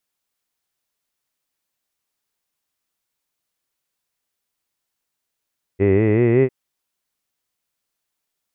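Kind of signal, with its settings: formant-synthesis vowel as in hid, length 0.70 s, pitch 93.7 Hz, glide +6 st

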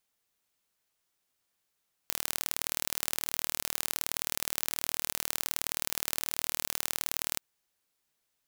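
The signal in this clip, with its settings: pulse train 38.7 per s, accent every 2, -2 dBFS 5.28 s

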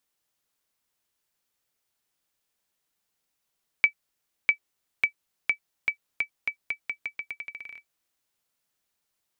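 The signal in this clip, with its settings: bouncing ball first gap 0.65 s, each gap 0.84, 2.3 kHz, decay 92 ms -8 dBFS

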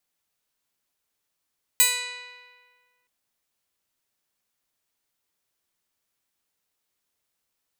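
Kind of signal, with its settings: plucked string B4, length 1.27 s, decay 1.72 s, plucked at 0.09, bright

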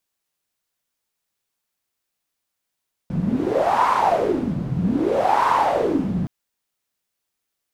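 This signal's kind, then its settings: wind-like swept noise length 3.17 s, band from 160 Hz, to 1 kHz, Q 6.7, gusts 2, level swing 4 dB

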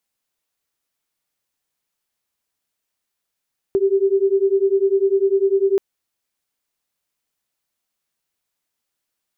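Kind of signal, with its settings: beating tones 386 Hz, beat 10 Hz, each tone -17 dBFS 2.03 s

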